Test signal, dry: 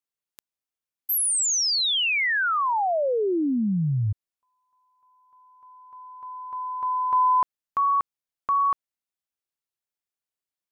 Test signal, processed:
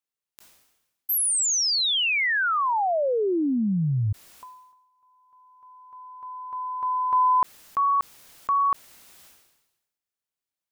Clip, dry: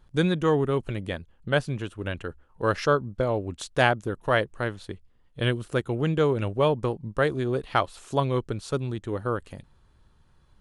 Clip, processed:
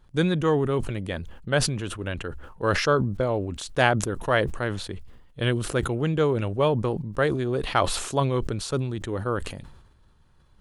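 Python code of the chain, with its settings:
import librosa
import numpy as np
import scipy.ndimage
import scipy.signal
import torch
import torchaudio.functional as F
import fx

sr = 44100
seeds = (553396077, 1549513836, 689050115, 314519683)

y = fx.sustainer(x, sr, db_per_s=55.0)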